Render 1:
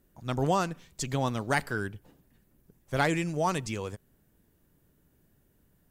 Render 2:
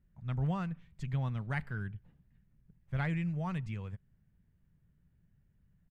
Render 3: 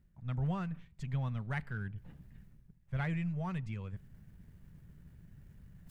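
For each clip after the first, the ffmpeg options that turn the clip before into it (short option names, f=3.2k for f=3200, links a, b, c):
-af "firequalizer=gain_entry='entry(170,0);entry(290,-17);entry(2000,-8);entry(5500,-27)':delay=0.05:min_phase=1"
-af "aeval=exprs='if(lt(val(0),0),0.708*val(0),val(0))':c=same,areverse,acompressor=mode=upward:threshold=-40dB:ratio=2.5,areverse"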